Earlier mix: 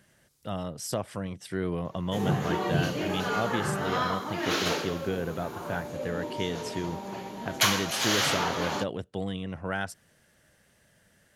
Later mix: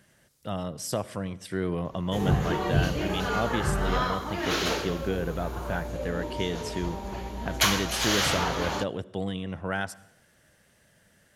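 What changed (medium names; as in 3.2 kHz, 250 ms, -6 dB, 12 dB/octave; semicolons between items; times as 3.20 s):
background: remove high-pass 130 Hz 24 dB/octave; reverb: on, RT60 0.80 s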